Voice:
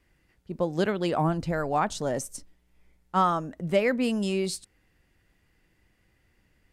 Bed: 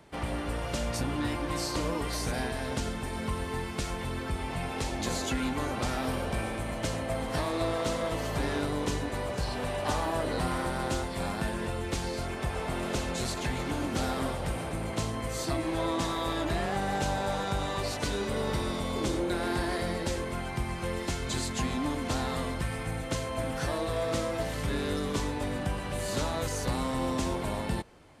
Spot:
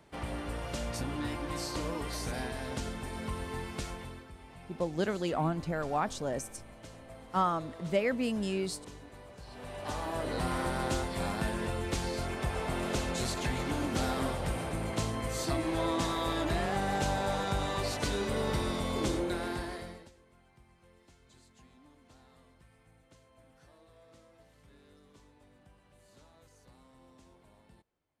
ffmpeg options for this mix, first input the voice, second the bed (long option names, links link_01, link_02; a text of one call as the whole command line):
ffmpeg -i stem1.wav -i stem2.wav -filter_complex "[0:a]adelay=4200,volume=-5.5dB[link_01];[1:a]volume=12dB,afade=type=out:start_time=3.79:duration=0.49:silence=0.223872,afade=type=in:start_time=9.44:duration=1.23:silence=0.149624,afade=type=out:start_time=19.06:duration=1.05:silence=0.0398107[link_02];[link_01][link_02]amix=inputs=2:normalize=0" out.wav